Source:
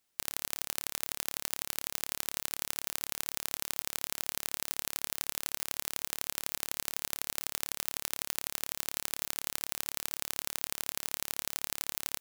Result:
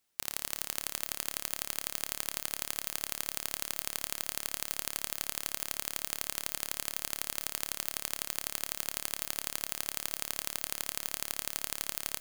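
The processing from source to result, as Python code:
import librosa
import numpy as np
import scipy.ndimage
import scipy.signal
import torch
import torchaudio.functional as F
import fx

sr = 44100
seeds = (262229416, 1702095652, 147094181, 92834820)

y = fx.rev_schroeder(x, sr, rt60_s=3.7, comb_ms=26, drr_db=15.5)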